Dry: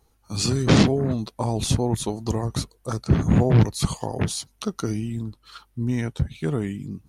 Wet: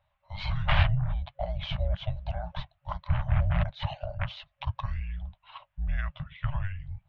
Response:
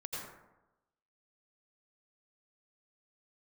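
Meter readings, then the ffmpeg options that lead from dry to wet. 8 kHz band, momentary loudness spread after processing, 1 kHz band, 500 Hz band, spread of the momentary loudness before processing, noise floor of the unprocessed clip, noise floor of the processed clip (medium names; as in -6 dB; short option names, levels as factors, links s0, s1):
under -35 dB, 13 LU, -5.0 dB, -14.0 dB, 13 LU, -63 dBFS, -75 dBFS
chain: -af "afftfilt=real='re*(1-between(b*sr/4096,420,850))':imag='im*(1-between(b*sr/4096,420,850))':win_size=4096:overlap=0.75,highpass=f=200:t=q:w=0.5412,highpass=f=200:t=q:w=1.307,lowpass=f=3400:t=q:w=0.5176,lowpass=f=3400:t=q:w=0.7071,lowpass=f=3400:t=q:w=1.932,afreqshift=-290,volume=0.891"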